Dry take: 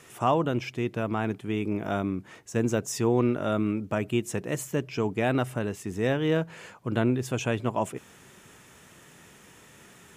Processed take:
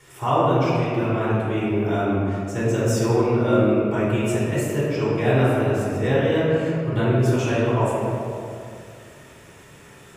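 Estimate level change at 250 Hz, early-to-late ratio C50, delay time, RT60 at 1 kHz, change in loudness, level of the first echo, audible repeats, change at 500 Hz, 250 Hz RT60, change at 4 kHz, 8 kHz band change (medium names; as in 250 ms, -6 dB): +5.5 dB, -3.0 dB, no echo, 2.1 s, +7.0 dB, no echo, no echo, +8.0 dB, 2.4 s, +4.5 dB, +2.0 dB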